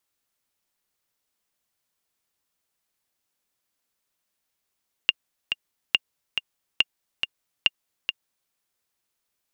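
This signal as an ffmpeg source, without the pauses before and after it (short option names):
-f lavfi -i "aevalsrc='pow(10,(-4-7*gte(mod(t,2*60/140),60/140))/20)*sin(2*PI*2810*mod(t,60/140))*exp(-6.91*mod(t,60/140)/0.03)':d=3.42:s=44100"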